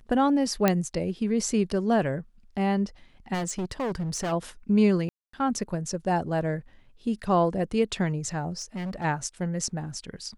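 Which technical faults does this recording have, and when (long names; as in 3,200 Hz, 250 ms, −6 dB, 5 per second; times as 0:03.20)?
0:00.68: click −7 dBFS
0:03.33–0:04.33: clipping −26 dBFS
0:05.09–0:05.33: drop-out 244 ms
0:08.57–0:09.05: clipping −29.5 dBFS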